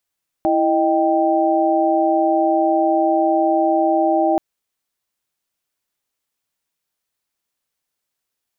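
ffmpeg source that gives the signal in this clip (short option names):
-f lavfi -i "aevalsrc='0.126*(sin(2*PI*329.63*t)+sin(2*PI*622.25*t)+sin(2*PI*783.99*t))':d=3.93:s=44100"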